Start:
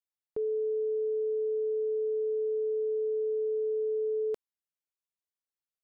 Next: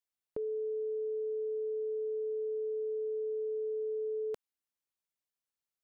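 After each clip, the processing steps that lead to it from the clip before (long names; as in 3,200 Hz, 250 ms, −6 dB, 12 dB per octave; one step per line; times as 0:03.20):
dynamic equaliser 360 Hz, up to −6 dB, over −43 dBFS, Q 1.1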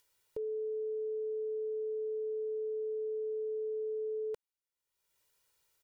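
comb filter 2.1 ms, depth 64%
upward compression, threshold −52 dBFS
level −5 dB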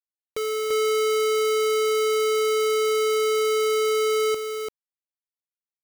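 bit-depth reduction 6 bits, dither none
single-tap delay 341 ms −3.5 dB
level +7 dB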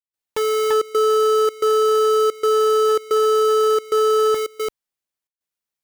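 gate pattern ".xxxxx.xxxx" 111 BPM −24 dB
saturating transformer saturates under 580 Hz
level +8 dB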